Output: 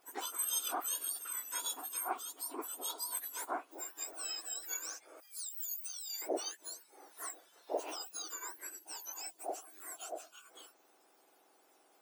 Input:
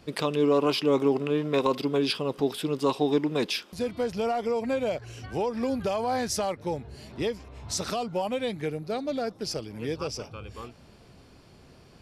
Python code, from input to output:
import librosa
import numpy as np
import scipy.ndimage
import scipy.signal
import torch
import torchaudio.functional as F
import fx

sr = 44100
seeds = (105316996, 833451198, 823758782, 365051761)

y = fx.octave_mirror(x, sr, pivot_hz=1900.0)
y = fx.pre_emphasis(y, sr, coefficient=0.97, at=(5.2, 6.22))
y = F.gain(torch.from_numpy(y), -8.5).numpy()